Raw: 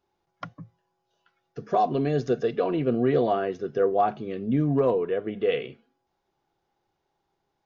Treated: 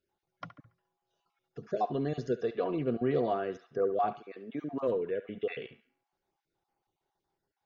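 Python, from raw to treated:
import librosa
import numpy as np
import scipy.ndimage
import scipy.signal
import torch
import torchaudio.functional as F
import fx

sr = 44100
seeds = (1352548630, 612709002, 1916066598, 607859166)

p1 = fx.spec_dropout(x, sr, seeds[0], share_pct=23)
p2 = fx.highpass(p1, sr, hz=fx.line((4.18, 530.0), (4.87, 220.0)), slope=12, at=(4.18, 4.87), fade=0.02)
p3 = p2 + fx.echo_banded(p2, sr, ms=70, feedback_pct=42, hz=1700.0, wet_db=-11.5, dry=0)
y = p3 * librosa.db_to_amplitude(-6.5)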